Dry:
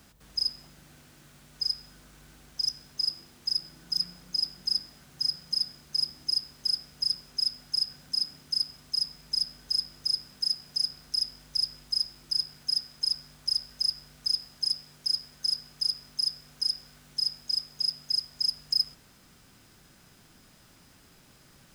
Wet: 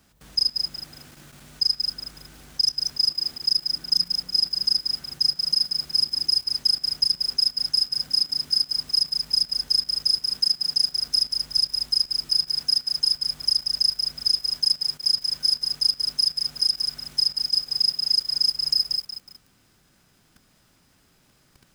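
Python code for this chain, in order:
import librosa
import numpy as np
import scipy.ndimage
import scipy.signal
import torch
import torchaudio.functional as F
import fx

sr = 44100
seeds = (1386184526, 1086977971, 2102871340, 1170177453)

y = fx.level_steps(x, sr, step_db=14)
y = fx.echo_crushed(y, sr, ms=184, feedback_pct=35, bits=9, wet_db=-4.5)
y = F.gain(torch.from_numpy(y), 8.5).numpy()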